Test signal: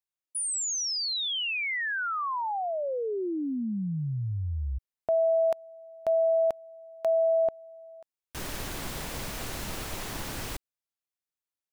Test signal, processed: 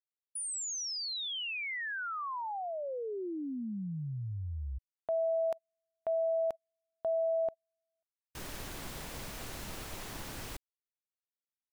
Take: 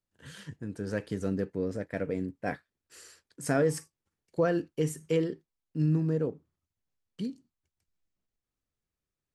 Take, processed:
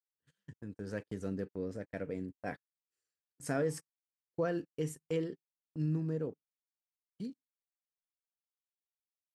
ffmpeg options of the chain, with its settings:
ffmpeg -i in.wav -af "agate=range=-33dB:threshold=-44dB:ratio=16:release=69:detection=peak,volume=-7dB" out.wav

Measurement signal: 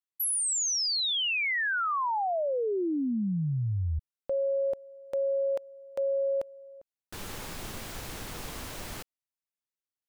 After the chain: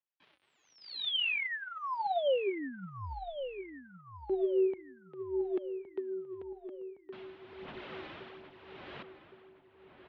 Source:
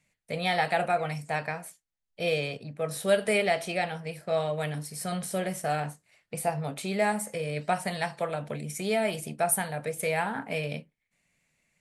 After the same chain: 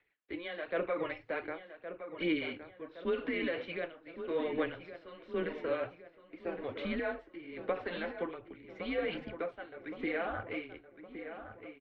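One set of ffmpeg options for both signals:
ffmpeg -i in.wav -filter_complex "[0:a]tremolo=f=0.88:d=0.78,alimiter=limit=-24dB:level=0:latency=1:release=46,aphaser=in_gain=1:out_gain=1:delay=4.2:decay=0.46:speed=1.3:type=sinusoidal,highpass=frequency=320:width_type=q:width=0.5412,highpass=frequency=320:width_type=q:width=1.307,lowpass=frequency=3600:width_type=q:width=0.5176,lowpass=frequency=3600:width_type=q:width=0.7071,lowpass=frequency=3600:width_type=q:width=1.932,afreqshift=-170,asplit=2[link_01][link_02];[link_02]adelay=1115,lowpass=frequency=2600:poles=1,volume=-10dB,asplit=2[link_03][link_04];[link_04]adelay=1115,lowpass=frequency=2600:poles=1,volume=0.53,asplit=2[link_05][link_06];[link_06]adelay=1115,lowpass=frequency=2600:poles=1,volume=0.53,asplit=2[link_07][link_08];[link_08]adelay=1115,lowpass=frequency=2600:poles=1,volume=0.53,asplit=2[link_09][link_10];[link_10]adelay=1115,lowpass=frequency=2600:poles=1,volume=0.53,asplit=2[link_11][link_12];[link_12]adelay=1115,lowpass=frequency=2600:poles=1,volume=0.53[link_13];[link_03][link_05][link_07][link_09][link_11][link_13]amix=inputs=6:normalize=0[link_14];[link_01][link_14]amix=inputs=2:normalize=0,volume=-2.5dB" out.wav

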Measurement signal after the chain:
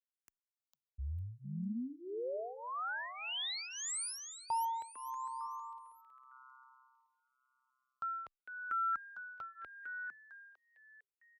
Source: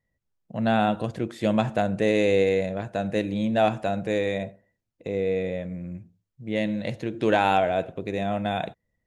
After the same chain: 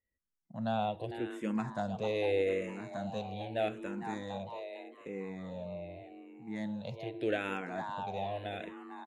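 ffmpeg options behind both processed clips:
ffmpeg -i in.wav -filter_complex "[0:a]asplit=5[link_01][link_02][link_03][link_04][link_05];[link_02]adelay=453,afreqshift=130,volume=-9dB[link_06];[link_03]adelay=906,afreqshift=260,volume=-17dB[link_07];[link_04]adelay=1359,afreqshift=390,volume=-24.9dB[link_08];[link_05]adelay=1812,afreqshift=520,volume=-32.9dB[link_09];[link_01][link_06][link_07][link_08][link_09]amix=inputs=5:normalize=0,asplit=2[link_10][link_11];[link_11]afreqshift=-0.82[link_12];[link_10][link_12]amix=inputs=2:normalize=1,volume=-9dB" out.wav

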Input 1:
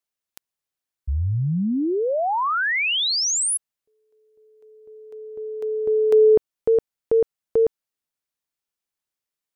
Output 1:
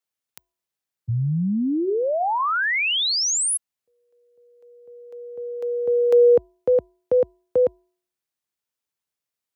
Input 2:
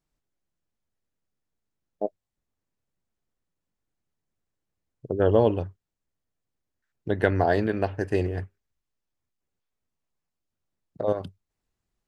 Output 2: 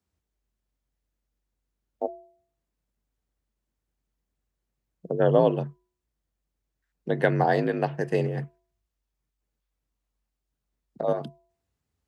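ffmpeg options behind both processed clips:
ffmpeg -i in.wav -af "bandreject=frequency=314.2:width_type=h:width=4,bandreject=frequency=628.4:width_type=h:width=4,bandreject=frequency=942.6:width_type=h:width=4,afreqshift=48" out.wav

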